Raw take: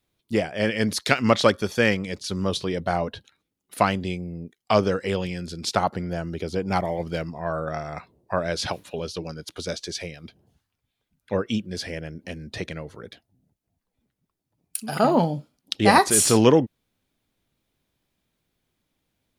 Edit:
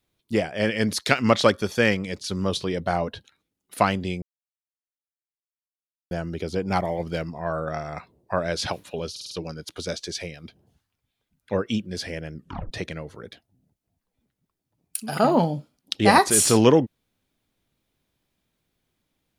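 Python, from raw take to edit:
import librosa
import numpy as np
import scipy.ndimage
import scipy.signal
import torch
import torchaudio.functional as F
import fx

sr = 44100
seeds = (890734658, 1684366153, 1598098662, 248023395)

y = fx.edit(x, sr, fx.silence(start_s=4.22, length_s=1.89),
    fx.stutter(start_s=9.11, slice_s=0.05, count=5),
    fx.tape_stop(start_s=12.14, length_s=0.37), tone=tone)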